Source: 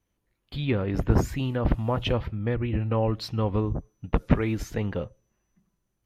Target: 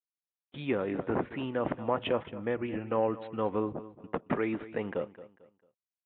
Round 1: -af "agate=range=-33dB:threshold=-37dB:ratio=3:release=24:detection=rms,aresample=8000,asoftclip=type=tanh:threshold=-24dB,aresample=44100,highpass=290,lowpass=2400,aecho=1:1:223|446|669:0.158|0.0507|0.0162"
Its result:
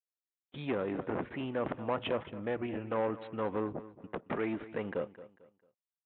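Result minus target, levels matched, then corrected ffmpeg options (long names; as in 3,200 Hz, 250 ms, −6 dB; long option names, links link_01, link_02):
soft clipping: distortion +8 dB
-af "agate=range=-33dB:threshold=-37dB:ratio=3:release=24:detection=rms,aresample=8000,asoftclip=type=tanh:threshold=-13.5dB,aresample=44100,highpass=290,lowpass=2400,aecho=1:1:223|446|669:0.158|0.0507|0.0162"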